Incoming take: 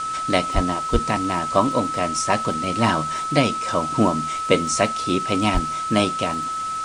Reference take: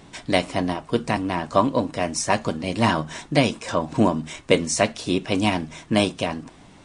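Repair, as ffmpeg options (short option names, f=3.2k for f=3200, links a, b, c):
-filter_complex "[0:a]adeclick=t=4,bandreject=f=1.3k:w=30,asplit=3[a][b][c];[a]afade=t=out:st=0.54:d=0.02[d];[b]highpass=f=140:w=0.5412,highpass=f=140:w=1.3066,afade=t=in:st=0.54:d=0.02,afade=t=out:st=0.66:d=0.02[e];[c]afade=t=in:st=0.66:d=0.02[f];[d][e][f]amix=inputs=3:normalize=0,asplit=3[g][h][i];[g]afade=t=out:st=0.92:d=0.02[j];[h]highpass=f=140:w=0.5412,highpass=f=140:w=1.3066,afade=t=in:st=0.92:d=0.02,afade=t=out:st=1.04:d=0.02[k];[i]afade=t=in:st=1.04:d=0.02[l];[j][k][l]amix=inputs=3:normalize=0,asplit=3[m][n][o];[m]afade=t=out:st=5.53:d=0.02[p];[n]highpass=f=140:w=0.5412,highpass=f=140:w=1.3066,afade=t=in:st=5.53:d=0.02,afade=t=out:st=5.65:d=0.02[q];[o]afade=t=in:st=5.65:d=0.02[r];[p][q][r]amix=inputs=3:normalize=0,afwtdn=0.014"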